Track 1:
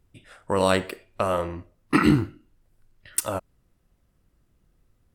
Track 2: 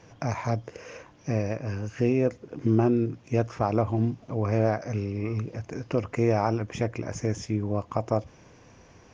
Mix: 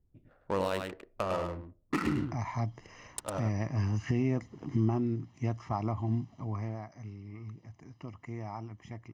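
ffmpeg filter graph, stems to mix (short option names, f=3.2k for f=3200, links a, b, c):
-filter_complex "[0:a]adynamicsmooth=sensitivity=3:basefreq=620,volume=-7dB,asplit=2[a][b];[b]volume=-6dB[c];[1:a]highpass=55,acrossover=split=5600[d][e];[e]acompressor=threshold=-57dB:ratio=4:attack=1:release=60[f];[d][f]amix=inputs=2:normalize=0,aecho=1:1:1:0.75,adelay=2100,volume=-1dB,afade=t=in:st=3.4:d=0.29:silence=0.446684,afade=t=out:st=4.58:d=0.68:silence=0.446684,afade=t=out:st=6.35:d=0.41:silence=0.334965[g];[c]aecho=0:1:104:1[h];[a][g][h]amix=inputs=3:normalize=0,alimiter=limit=-19.5dB:level=0:latency=1:release=388"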